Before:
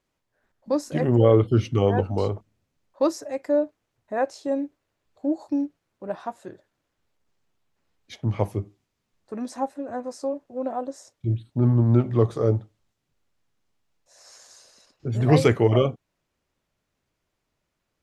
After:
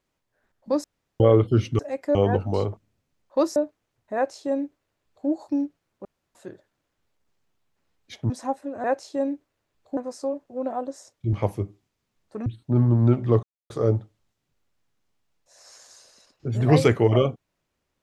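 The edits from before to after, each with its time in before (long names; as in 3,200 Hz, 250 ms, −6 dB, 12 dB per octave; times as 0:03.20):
0:00.84–0:01.20: fill with room tone
0:03.20–0:03.56: move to 0:01.79
0:04.15–0:05.28: duplicate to 0:09.97
0:06.05–0:06.35: fill with room tone
0:08.30–0:09.43: move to 0:11.33
0:12.30: splice in silence 0.27 s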